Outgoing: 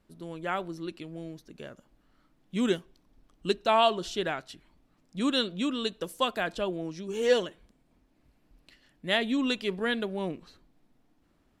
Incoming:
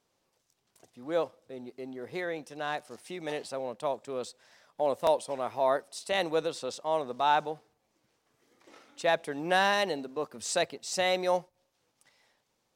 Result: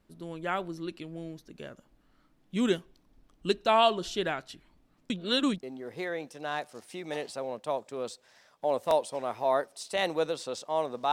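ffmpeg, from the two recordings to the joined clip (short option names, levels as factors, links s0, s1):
-filter_complex "[0:a]apad=whole_dur=11.12,atrim=end=11.12,asplit=2[s0][s1];[s0]atrim=end=5.102[s2];[s1]atrim=start=5.098:end=5.632,asetpts=PTS-STARTPTS,areverse[s3];[1:a]atrim=start=1.788:end=7.28[s4];[s2][s3]acrossfade=d=0.004:c1=hsin:c2=hsin[s5];[s5][s4]acrossfade=d=0.004:c1=hsin:c2=hsin"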